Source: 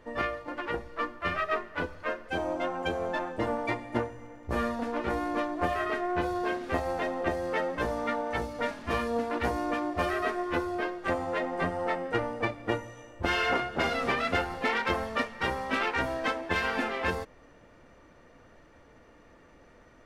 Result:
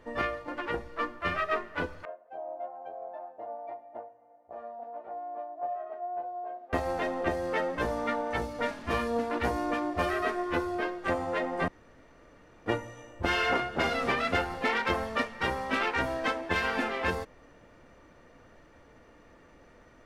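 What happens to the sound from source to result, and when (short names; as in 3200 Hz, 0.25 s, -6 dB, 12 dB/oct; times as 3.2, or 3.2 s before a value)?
2.05–6.73 band-pass 690 Hz, Q 8.3
11.68–12.66 room tone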